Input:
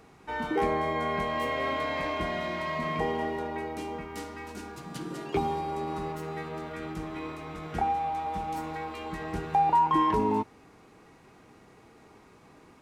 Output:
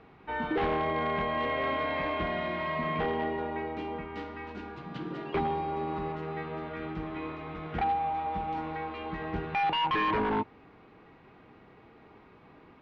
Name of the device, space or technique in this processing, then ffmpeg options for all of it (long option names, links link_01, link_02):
synthesiser wavefolder: -af "aeval=exprs='0.075*(abs(mod(val(0)/0.075+3,4)-2)-1)':channel_layout=same,lowpass=frequency=3500:width=0.5412,lowpass=frequency=3500:width=1.3066"